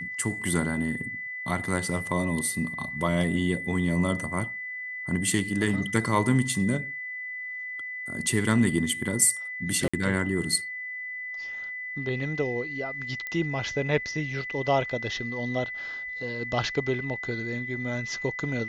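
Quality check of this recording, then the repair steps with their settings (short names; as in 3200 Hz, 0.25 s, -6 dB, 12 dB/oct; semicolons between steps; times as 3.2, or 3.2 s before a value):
tone 2000 Hz -33 dBFS
9.88–9.94 gap 55 ms
13.27 pop -20 dBFS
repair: de-click; notch 2000 Hz, Q 30; interpolate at 9.88, 55 ms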